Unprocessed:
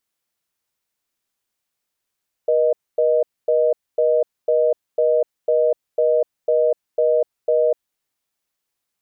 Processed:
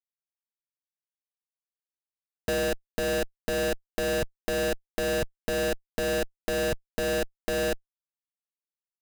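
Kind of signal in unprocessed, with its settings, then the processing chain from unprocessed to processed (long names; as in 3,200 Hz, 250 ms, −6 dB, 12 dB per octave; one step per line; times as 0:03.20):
call progress tone reorder tone, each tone −16.5 dBFS 5.44 s
running median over 41 samples
comparator with hysteresis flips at −28.5 dBFS
downward compressor, threshold −26 dBFS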